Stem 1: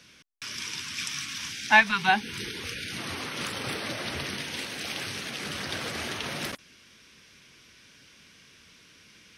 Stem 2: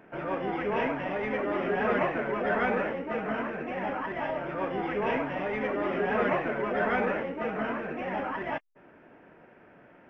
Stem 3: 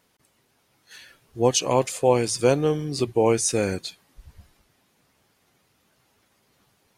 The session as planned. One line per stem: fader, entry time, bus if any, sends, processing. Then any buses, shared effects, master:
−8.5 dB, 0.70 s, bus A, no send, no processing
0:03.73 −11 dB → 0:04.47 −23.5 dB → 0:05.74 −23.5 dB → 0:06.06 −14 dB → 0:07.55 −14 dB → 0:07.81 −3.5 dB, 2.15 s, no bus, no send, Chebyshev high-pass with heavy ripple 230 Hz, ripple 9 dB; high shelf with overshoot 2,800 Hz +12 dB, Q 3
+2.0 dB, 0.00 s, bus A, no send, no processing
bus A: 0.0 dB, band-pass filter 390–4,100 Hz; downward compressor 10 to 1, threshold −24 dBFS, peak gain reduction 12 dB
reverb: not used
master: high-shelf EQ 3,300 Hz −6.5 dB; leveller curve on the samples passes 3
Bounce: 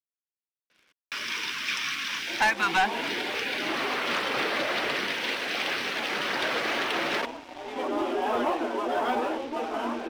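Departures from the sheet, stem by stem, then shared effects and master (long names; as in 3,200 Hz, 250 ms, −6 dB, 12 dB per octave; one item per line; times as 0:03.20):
stem 1 −8.5 dB → −2.0 dB
stem 3: muted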